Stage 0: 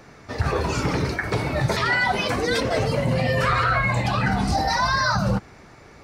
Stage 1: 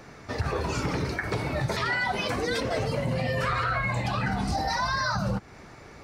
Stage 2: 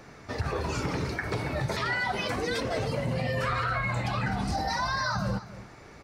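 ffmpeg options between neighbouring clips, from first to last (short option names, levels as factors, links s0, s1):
-af "acompressor=threshold=0.0355:ratio=2"
-af "aecho=1:1:275:0.178,volume=0.794"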